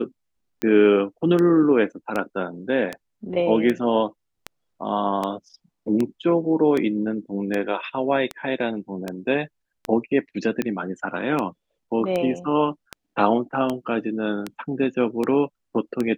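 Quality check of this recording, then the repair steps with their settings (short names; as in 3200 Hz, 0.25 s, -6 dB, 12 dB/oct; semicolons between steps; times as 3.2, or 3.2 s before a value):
tick 78 rpm -12 dBFS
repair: de-click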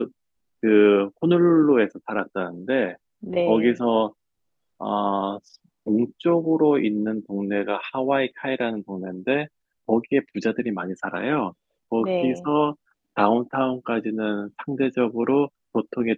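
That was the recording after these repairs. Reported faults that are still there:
none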